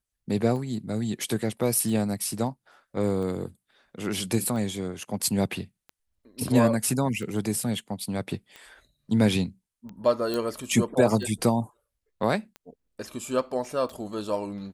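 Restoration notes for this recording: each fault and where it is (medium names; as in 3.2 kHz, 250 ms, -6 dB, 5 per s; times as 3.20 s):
tick 45 rpm -27 dBFS
10.34 s: pop -16 dBFS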